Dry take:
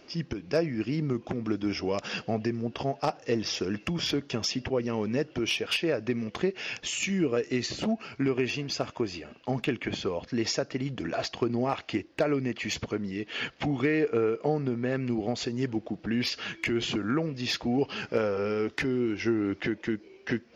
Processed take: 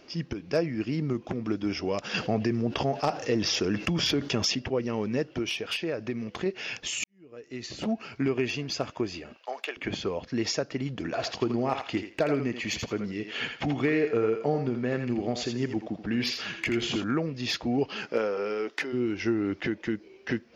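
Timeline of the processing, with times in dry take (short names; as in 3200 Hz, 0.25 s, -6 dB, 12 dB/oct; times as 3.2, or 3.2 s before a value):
2.14–4.55 fast leveller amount 50%
5.42–6.46 compressor 1.5:1, threshold -32 dBFS
7.04–7.94 fade in quadratic
9.36–9.77 HPF 520 Hz 24 dB/oct
11.15–17.04 thinning echo 82 ms, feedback 23%, level -6.5 dB
17.88–18.92 HPF 170 Hz -> 470 Hz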